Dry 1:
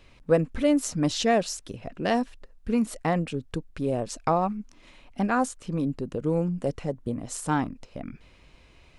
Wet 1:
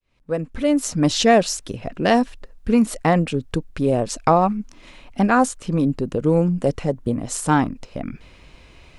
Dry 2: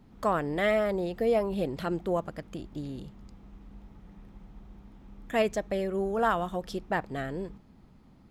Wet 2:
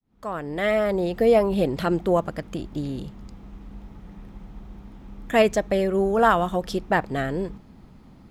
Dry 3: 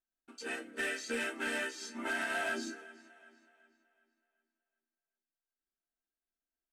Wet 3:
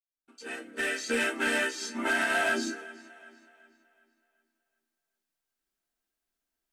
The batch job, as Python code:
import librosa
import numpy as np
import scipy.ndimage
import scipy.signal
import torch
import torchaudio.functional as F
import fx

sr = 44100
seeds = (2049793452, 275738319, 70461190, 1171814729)

y = fx.fade_in_head(x, sr, length_s=1.21)
y = y * 10.0 ** (8.0 / 20.0)